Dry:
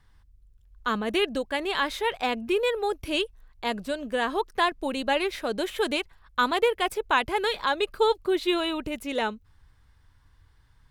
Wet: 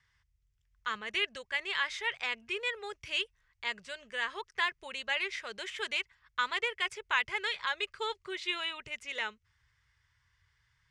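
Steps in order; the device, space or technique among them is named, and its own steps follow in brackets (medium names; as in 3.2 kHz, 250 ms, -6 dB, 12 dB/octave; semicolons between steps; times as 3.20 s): car door speaker (cabinet simulation 92–7000 Hz, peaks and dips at 130 Hz +6 dB, 390 Hz +8 dB, 740 Hz -7 dB, 2 kHz +7 dB, 4 kHz -7 dB); amplifier tone stack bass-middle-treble 10-0-10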